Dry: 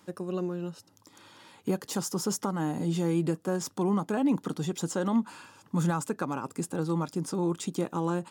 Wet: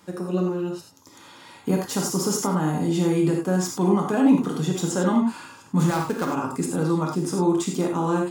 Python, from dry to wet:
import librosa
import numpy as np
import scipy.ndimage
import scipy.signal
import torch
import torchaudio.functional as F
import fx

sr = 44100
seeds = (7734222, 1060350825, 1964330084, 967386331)

y = fx.dead_time(x, sr, dead_ms=0.11, at=(5.79, 6.25))
y = fx.rev_gated(y, sr, seeds[0], gate_ms=120, shape='flat', drr_db=-0.5)
y = F.gain(torch.from_numpy(y), 4.0).numpy()